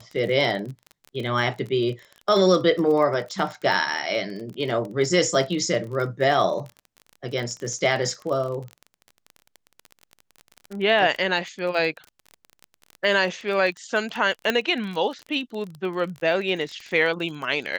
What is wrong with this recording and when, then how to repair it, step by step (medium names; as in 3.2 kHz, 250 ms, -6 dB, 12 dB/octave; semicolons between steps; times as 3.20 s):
crackle 29 per s -30 dBFS
14.50 s: pop -8 dBFS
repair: de-click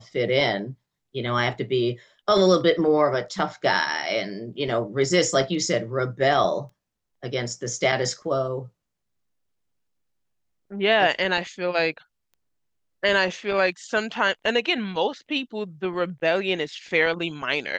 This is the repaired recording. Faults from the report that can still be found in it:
nothing left